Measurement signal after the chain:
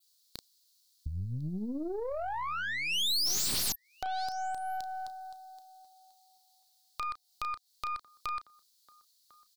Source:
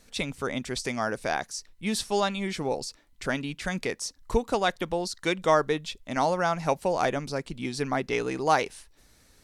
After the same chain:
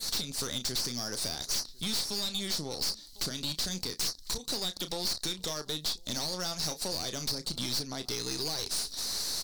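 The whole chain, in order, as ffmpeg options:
-filter_complex "[0:a]alimiter=limit=0.158:level=0:latency=1:release=337,acompressor=threshold=0.0112:ratio=8,asplit=2[s0][s1];[s1]adelay=33,volume=0.224[s2];[s0][s2]amix=inputs=2:normalize=0,asplit=2[s3][s4];[s4]adelay=1050,volume=0.0562,highshelf=f=4000:g=-23.6[s5];[s3][s5]amix=inputs=2:normalize=0,aexciter=amount=4.1:drive=8.4:freq=3500,aeval=exprs='(mod(10*val(0)+1,2)-1)/10':c=same,equalizer=f=4300:w=1.8:g=14.5,acrossover=split=370[s6][s7];[s7]acompressor=threshold=0.0224:ratio=6[s8];[s6][s8]amix=inputs=2:normalize=0,adynamicequalizer=threshold=0.00398:dfrequency=5500:dqfactor=2.2:tfrequency=5500:tqfactor=2.2:attack=5:release=100:ratio=0.375:range=2:mode=boostabove:tftype=bell,aeval=exprs='(tanh(63.1*val(0)+0.65)-tanh(0.65))/63.1':c=same,volume=2.51"

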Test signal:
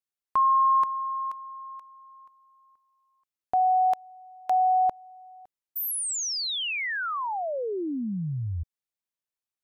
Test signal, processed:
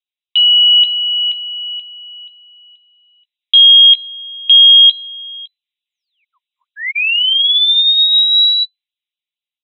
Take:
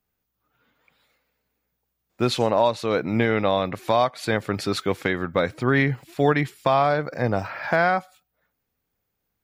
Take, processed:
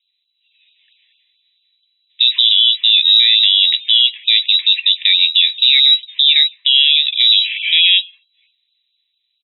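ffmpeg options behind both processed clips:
-filter_complex "[0:a]asuperstop=centerf=2600:order=4:qfactor=1.8,lowpass=f=3400:t=q:w=0.5098,lowpass=f=3400:t=q:w=0.6013,lowpass=f=3400:t=q:w=0.9,lowpass=f=3400:t=q:w=2.563,afreqshift=-4000,highpass=f=650:w=0.5412,highpass=f=650:w=1.3066,asplit=2[s0][s1];[s1]adelay=16,volume=0.251[s2];[s0][s2]amix=inputs=2:normalize=0,crystalizer=i=5.5:c=0,equalizer=f=2400:w=0.35:g=-9,dynaudnorm=f=340:g=7:m=2.11,alimiter=level_in=3.55:limit=0.891:release=50:level=0:latency=1,afftfilt=real='re*gte(b*sr/1024,960*pow(2500/960,0.5+0.5*sin(2*PI*4.5*pts/sr)))':imag='im*gte(b*sr/1024,960*pow(2500/960,0.5+0.5*sin(2*PI*4.5*pts/sr)))':win_size=1024:overlap=0.75,volume=0.891"

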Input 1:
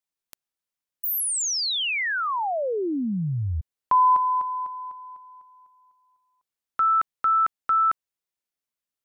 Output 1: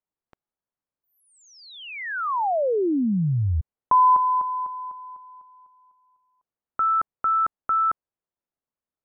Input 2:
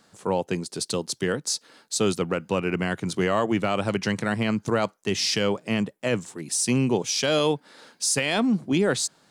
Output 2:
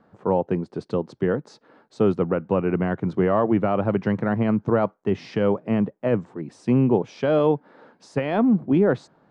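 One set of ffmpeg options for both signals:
-af "lowpass=1100,volume=1.58"

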